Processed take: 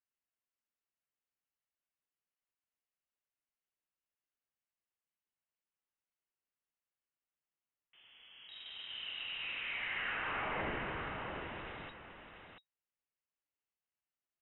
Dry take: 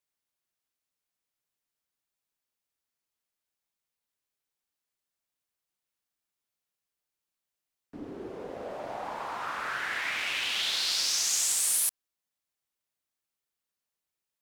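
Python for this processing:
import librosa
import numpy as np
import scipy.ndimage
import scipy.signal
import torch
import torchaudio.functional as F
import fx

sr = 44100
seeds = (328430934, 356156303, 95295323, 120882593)

p1 = scipy.signal.sosfilt(scipy.signal.butter(4, 730.0, 'highpass', fs=sr, output='sos'), x)
p2 = fx.air_absorb(p1, sr, metres=95.0)
p3 = fx.schmitt(p2, sr, flips_db=-40.5)
p4 = p2 + (p3 * librosa.db_to_amplitude(-8.5))
p5 = fx.notch(p4, sr, hz=1400.0, q=12.0)
p6 = p5 + fx.echo_single(p5, sr, ms=688, db=-6.5, dry=0)
p7 = fx.freq_invert(p6, sr, carrier_hz=3800)
y = p7 * librosa.db_to_amplitude(-6.0)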